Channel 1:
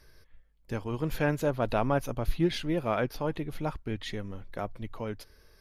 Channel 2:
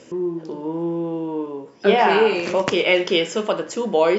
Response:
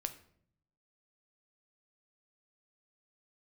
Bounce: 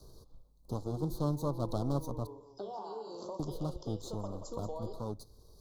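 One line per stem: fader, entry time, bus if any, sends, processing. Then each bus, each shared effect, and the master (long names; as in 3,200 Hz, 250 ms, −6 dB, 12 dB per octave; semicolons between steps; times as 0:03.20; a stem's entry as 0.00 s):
−5.0 dB, 0.00 s, muted 0:02.27–0:03.39, send −11.5 dB, no echo send, lower of the sound and its delayed copy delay 0.47 ms
−14.5 dB, 0.75 s, no send, echo send −11 dB, noise gate with hold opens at −38 dBFS; low-shelf EQ 320 Hz −11.5 dB; downward compressor 6 to 1, threshold −27 dBFS, peak gain reduction 13 dB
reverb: on, RT60 0.60 s, pre-delay 7 ms
echo: single-tap delay 182 ms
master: elliptic band-stop filter 1,100–4,000 Hz, stop band 60 dB; multiband upward and downward compressor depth 40%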